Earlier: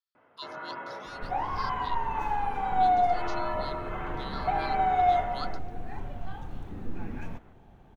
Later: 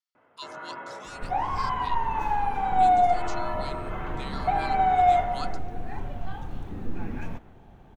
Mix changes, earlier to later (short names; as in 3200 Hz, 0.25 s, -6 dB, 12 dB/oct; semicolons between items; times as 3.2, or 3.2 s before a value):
speech: remove fixed phaser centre 2300 Hz, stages 6; second sound +3.5 dB